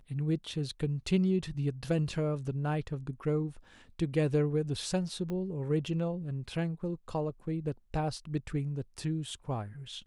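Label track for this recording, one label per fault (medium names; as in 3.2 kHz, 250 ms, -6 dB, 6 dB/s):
5.300000	5.300000	pop -26 dBFS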